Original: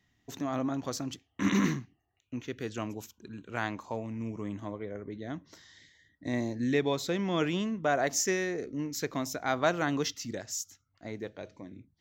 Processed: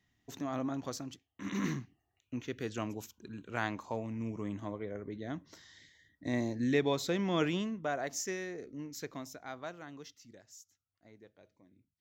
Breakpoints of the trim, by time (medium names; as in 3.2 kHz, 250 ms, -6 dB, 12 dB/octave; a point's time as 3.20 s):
0.88 s -4 dB
1.44 s -13.5 dB
1.80 s -1.5 dB
7.47 s -1.5 dB
8.00 s -8.5 dB
9.06 s -8.5 dB
9.85 s -18.5 dB